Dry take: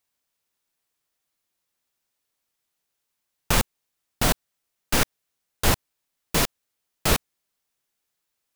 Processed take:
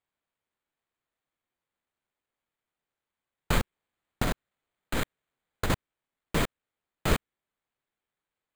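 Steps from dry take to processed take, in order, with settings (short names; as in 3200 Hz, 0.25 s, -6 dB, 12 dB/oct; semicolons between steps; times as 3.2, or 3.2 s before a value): dynamic EQ 810 Hz, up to -4 dB, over -39 dBFS, Q 1.7; 3.58–5.7 negative-ratio compressor -23 dBFS, ratio -1; careless resampling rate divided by 8×, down filtered, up hold; gain -2 dB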